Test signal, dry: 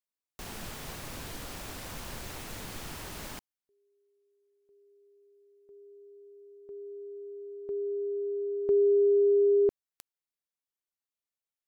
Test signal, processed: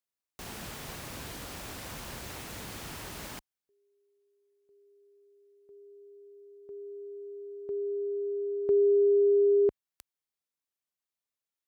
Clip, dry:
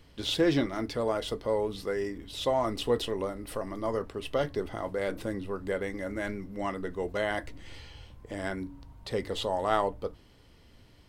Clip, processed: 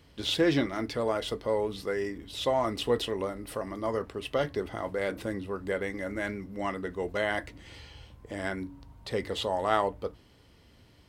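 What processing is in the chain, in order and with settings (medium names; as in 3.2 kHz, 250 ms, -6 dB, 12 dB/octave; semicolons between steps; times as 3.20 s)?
high-pass 43 Hz; dynamic bell 2.1 kHz, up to +3 dB, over -46 dBFS, Q 1.1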